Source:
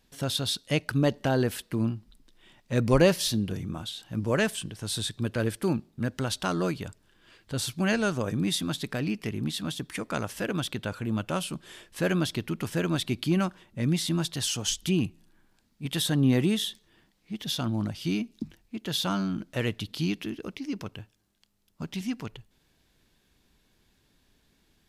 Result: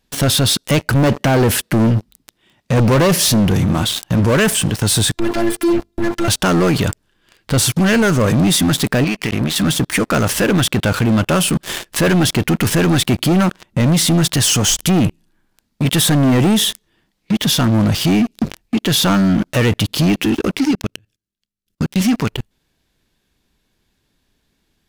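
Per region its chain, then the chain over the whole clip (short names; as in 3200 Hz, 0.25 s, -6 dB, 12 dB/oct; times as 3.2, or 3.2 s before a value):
0.93–3.47 HPF 64 Hz + low shelf 290 Hz +3 dB
5.14–6.28 robotiser 341 Hz + notches 50/100/150/200/250/300/350/400/450 Hz
9.04–9.56 bell 2200 Hz +6.5 dB 1.6 oct + compressor 16:1, threshold -37 dBFS
20.71–21.96 bell 880 Hz -14 dB 0.95 oct + level quantiser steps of 18 dB
whole clip: dynamic EQ 3900 Hz, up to -6 dB, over -45 dBFS, Q 1.7; sample leveller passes 5; maximiser +19 dB; gain -8.5 dB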